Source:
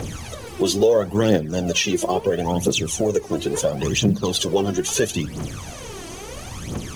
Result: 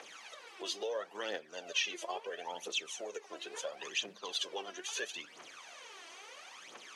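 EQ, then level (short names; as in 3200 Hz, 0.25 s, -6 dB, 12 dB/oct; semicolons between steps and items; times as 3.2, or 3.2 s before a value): BPF 410–2200 Hz; differentiator; +3.5 dB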